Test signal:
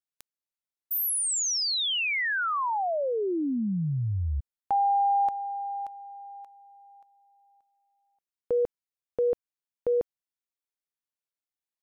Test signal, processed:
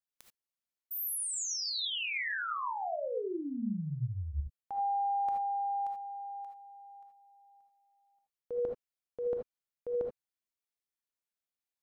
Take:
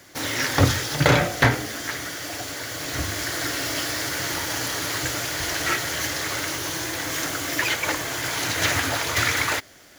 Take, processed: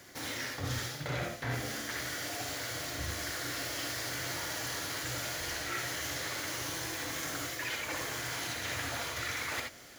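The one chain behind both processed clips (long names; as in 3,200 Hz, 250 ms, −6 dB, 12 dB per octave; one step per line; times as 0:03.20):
reversed playback
downward compressor 6 to 1, threshold −32 dBFS
reversed playback
reverb whose tail is shaped and stops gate 100 ms rising, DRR 1.5 dB
level −4.5 dB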